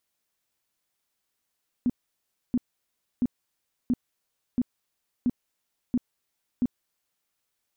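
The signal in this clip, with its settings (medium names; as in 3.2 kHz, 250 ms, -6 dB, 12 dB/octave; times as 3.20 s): tone bursts 246 Hz, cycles 9, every 0.68 s, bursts 8, -19.5 dBFS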